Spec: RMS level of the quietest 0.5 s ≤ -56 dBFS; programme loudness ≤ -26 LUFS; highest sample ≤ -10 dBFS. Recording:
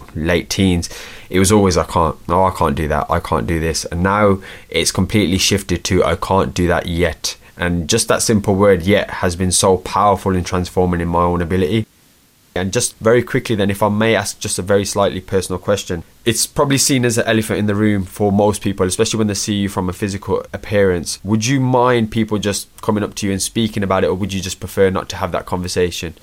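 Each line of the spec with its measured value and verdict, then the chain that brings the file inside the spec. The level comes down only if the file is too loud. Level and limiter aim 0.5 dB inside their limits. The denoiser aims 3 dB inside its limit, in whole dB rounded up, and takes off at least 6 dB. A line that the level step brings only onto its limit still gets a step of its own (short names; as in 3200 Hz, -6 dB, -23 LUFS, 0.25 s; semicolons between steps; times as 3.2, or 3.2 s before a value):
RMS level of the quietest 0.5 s -52 dBFS: fail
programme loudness -16.5 LUFS: fail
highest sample -2.5 dBFS: fail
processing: gain -10 dB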